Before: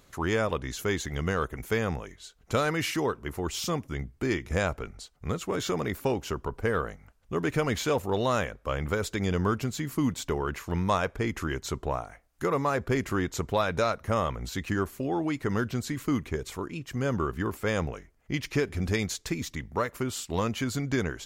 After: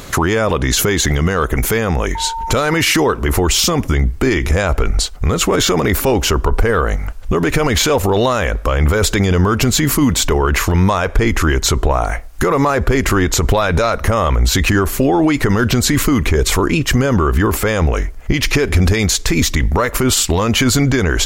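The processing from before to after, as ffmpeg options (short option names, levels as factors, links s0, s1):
-filter_complex "[0:a]asettb=1/sr,asplit=3[s0][s1][s2];[s0]atrim=end=2.154[s3];[s1]atrim=start=2.15:end=2.81,asetpts=PTS-STARTPTS,afade=t=in:d=0.004:c=qsin,afade=t=out:st=0.656:d=0.004:c=qsin,aeval=exprs='val(0)+0.00447*sin(2*PI*910*n/s)':c=same[s4];[s2]atrim=start=2.806[s5];[s3][s4]acrossfade=d=0.004:c1=hsin:c2=qsin[s6];[s6][s5]acrossfade=d=0.004:c1=qsin:c2=hsin,asubboost=boost=5.5:cutoff=52,acompressor=threshold=0.0316:ratio=6,alimiter=level_in=33.5:limit=0.891:release=50:level=0:latency=1,volume=0.631"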